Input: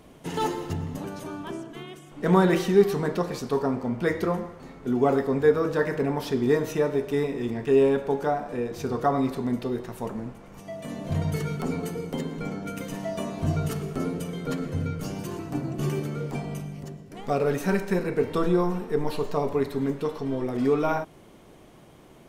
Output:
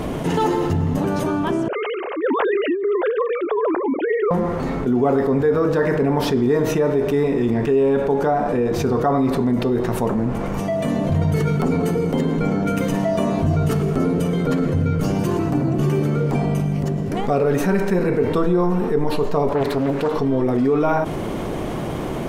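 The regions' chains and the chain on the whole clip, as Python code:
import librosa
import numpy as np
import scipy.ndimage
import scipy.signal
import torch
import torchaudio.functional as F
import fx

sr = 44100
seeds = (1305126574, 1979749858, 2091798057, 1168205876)

y = fx.chain(x, sr, fx.sine_speech(),
    fx.low_shelf(hz=250.0, db=-12.0),
    fx.over_compress(threshold_db=-31.0, ratio=-1.0), at=(1.68, 4.31))
y = fx.chain(y, sr, fx.low_shelf(hz=250.0, db=-10.0),
    fx.doppler_dist(depth_ms=0.69), at=(19.49, 20.14))
y = fx.high_shelf(y, sr, hz=2200.0, db=-8.5)
y = fx.env_flatten(y, sr, amount_pct=70)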